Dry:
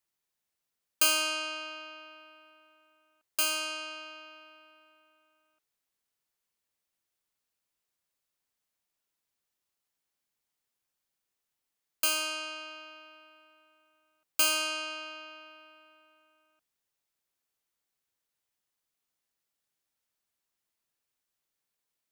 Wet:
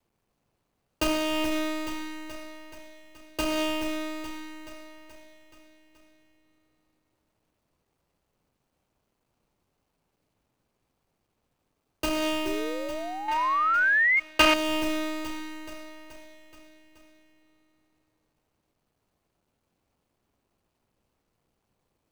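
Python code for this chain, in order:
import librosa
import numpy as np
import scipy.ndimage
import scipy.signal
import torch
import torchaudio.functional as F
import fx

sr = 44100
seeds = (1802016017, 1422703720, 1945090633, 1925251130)

p1 = scipy.signal.medfilt(x, 25)
p2 = fx.low_shelf(p1, sr, hz=280.0, db=7.0)
p3 = fx.echo_feedback(p2, sr, ms=427, feedback_pct=59, wet_db=-15.5)
p4 = fx.spec_paint(p3, sr, seeds[0], shape='rise', start_s=12.45, length_s=1.75, low_hz=370.0, high_hz=2200.0, level_db=-52.0)
p5 = fx.over_compress(p4, sr, threshold_db=-43.0, ratio=-0.5)
p6 = p4 + F.gain(torch.from_numpy(p5), 1.5).numpy()
p7 = fx.peak_eq(p6, sr, hz=1900.0, db=14.0, octaves=2.7, at=(13.28, 14.54))
y = F.gain(torch.from_numpy(p7), 8.5).numpy()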